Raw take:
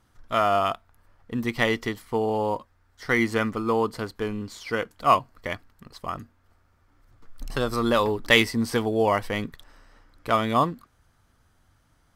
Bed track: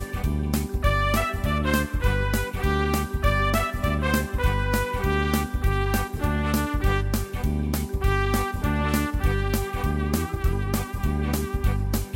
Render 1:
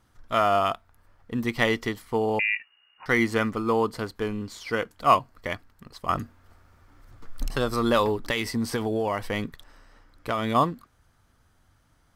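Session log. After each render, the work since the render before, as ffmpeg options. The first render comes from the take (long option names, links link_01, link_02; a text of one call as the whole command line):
ffmpeg -i in.wav -filter_complex "[0:a]asettb=1/sr,asplit=3[link_01][link_02][link_03];[link_01]atrim=end=2.394[link_04];[link_02]atrim=start=2.39:end=3.06,asetpts=PTS-STARTPTS,afade=type=in:duration=0.004:curve=qsin,afade=type=out:start_time=0.666:duration=0.004:curve=qsin,lowpass=frequency=2500:width_type=q:width=0.5098,lowpass=frequency=2500:width_type=q:width=0.6013,lowpass=frequency=2500:width_type=q:width=0.9,lowpass=frequency=2500:width_type=q:width=2.563,afreqshift=-2900[link_05];[link_03]atrim=start=3.056[link_06];[link_04][link_05]acrossfade=duration=0.004:curve1=hsin:curve2=qsin[link_07];[link_07][link_06]acrossfade=duration=0.004:curve1=qsin:curve2=hsin,asettb=1/sr,asplit=3[link_08][link_09][link_10];[link_08]atrim=end=6.094[link_11];[link_09]atrim=start=6.09:end=7.49,asetpts=PTS-STARTPTS,afade=type=in:duration=0.004:curve=qsin,afade=type=out:start_time=1.396:duration=0.004:curve=qsin,acontrast=86[link_12];[link_10]atrim=start=7.486[link_13];[link_11][link_12]acrossfade=duration=0.004:curve1=hsin:curve2=qsin[link_14];[link_14][link_13]acrossfade=duration=0.004:curve1=qsin:curve2=hsin,asettb=1/sr,asplit=3[link_15][link_16][link_17];[link_15]atrim=end=8.264[link_18];[link_16]atrim=start=8.26:end=10.55,asetpts=PTS-STARTPTS,afade=type=in:duration=0.004:curve=qsin,afade=type=out:start_time=2.286:duration=0.004:curve=qsin,acompressor=threshold=-21dB:ratio=12:attack=3.2:release=140:knee=1:detection=peak[link_19];[link_17]atrim=start=10.546[link_20];[link_18][link_19]acrossfade=duration=0.004:curve1=hsin:curve2=qsin[link_21];[link_21][link_20]acrossfade=duration=0.004:curve1=qsin:curve2=hsin" out.wav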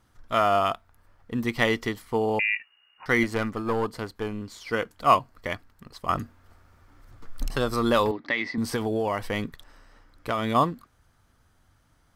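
ffmpeg -i in.wav -filter_complex "[0:a]asettb=1/sr,asplit=3[link_01][link_02][link_03];[link_01]atrim=end=3.234[link_04];[link_02]atrim=start=3.23:end=4.72,asetpts=PTS-STARTPTS,afade=type=in:duration=0.004:curve=qsin,afade=type=out:start_time=1.486:duration=0.004:curve=qsin,aeval=exprs='(tanh(6.31*val(0)+0.55)-tanh(0.55))/6.31':channel_layout=same[link_05];[link_03]atrim=start=4.716[link_06];[link_04][link_05]acrossfade=duration=0.004:curve1=hsin:curve2=qsin[link_07];[link_07][link_06]acrossfade=duration=0.004:curve1=qsin:curve2=hsin,asettb=1/sr,asplit=3[link_08][link_09][link_10];[link_08]atrim=end=8.114[link_11];[link_09]atrim=start=8.11:end=8.58,asetpts=PTS-STARTPTS,afade=type=in:duration=0.004:curve=qsin,afade=type=out:start_time=0.466:duration=0.004:curve=qsin,highpass=240,equalizer=frequency=280:width_type=q:width=4:gain=4,equalizer=frequency=430:width_type=q:width=4:gain=-9,equalizer=frequency=910:width_type=q:width=4:gain=-4,equalizer=frequency=1400:width_type=q:width=4:gain=-4,equalizer=frequency=2000:width_type=q:width=4:gain=7,equalizer=frequency=2900:width_type=q:width=4:gain=-9,lowpass=frequency=4100:width=0.5412,lowpass=frequency=4100:width=1.3066[link_12];[link_10]atrim=start=8.576[link_13];[link_11][link_12]acrossfade=duration=0.004:curve1=hsin:curve2=qsin[link_14];[link_14][link_13]acrossfade=duration=0.004:curve1=qsin:curve2=hsin" out.wav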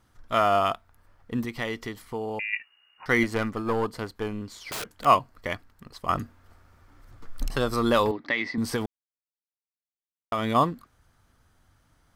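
ffmpeg -i in.wav -filter_complex "[0:a]asettb=1/sr,asplit=3[link_01][link_02][link_03];[link_01]atrim=end=1.454[link_04];[link_02]atrim=start=1.45:end=2.53,asetpts=PTS-STARTPTS,afade=type=in:duration=0.004:curve=qsin,afade=type=out:start_time=1.076:duration=0.004:curve=qsin,acompressor=threshold=-40dB:ratio=1.5:attack=3.2:release=140:knee=1:detection=peak[link_05];[link_03]atrim=start=2.526[link_06];[link_04][link_05]acrossfade=duration=0.004:curve1=hsin:curve2=qsin[link_07];[link_07][link_06]acrossfade=duration=0.004:curve1=qsin:curve2=hsin,asettb=1/sr,asplit=3[link_08][link_09][link_10];[link_08]atrim=end=4.554[link_11];[link_09]atrim=start=4.55:end=5.05,asetpts=PTS-STARTPTS,afade=type=in:duration=0.004:curve=qsin,afade=type=out:start_time=0.496:duration=0.004:curve=qsin,aeval=exprs='(mod(25.1*val(0)+1,2)-1)/25.1':channel_layout=same[link_12];[link_10]atrim=start=5.046[link_13];[link_11][link_12]acrossfade=duration=0.004:curve1=hsin:curve2=qsin[link_14];[link_14][link_13]acrossfade=duration=0.004:curve1=qsin:curve2=hsin,asplit=3[link_15][link_16][link_17];[link_15]atrim=end=8.86,asetpts=PTS-STARTPTS,afade=type=out:start_time=8.856:duration=0.004:curve=hsin[link_18];[link_16]atrim=start=8.86:end=10.32,asetpts=PTS-STARTPTS,volume=0[link_19];[link_17]atrim=start=10.32,asetpts=PTS-STARTPTS,afade=type=in:duration=0.004:curve=hsin[link_20];[link_18][link_19][link_20]concat=n=3:v=0:a=1" out.wav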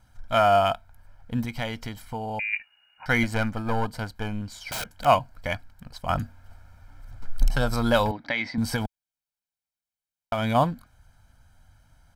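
ffmpeg -i in.wav -af "lowshelf=frequency=77:gain=5.5,aecho=1:1:1.3:0.73" out.wav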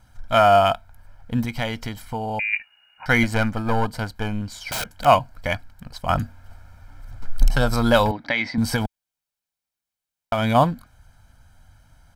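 ffmpeg -i in.wav -af "volume=4.5dB,alimiter=limit=-2dB:level=0:latency=1" out.wav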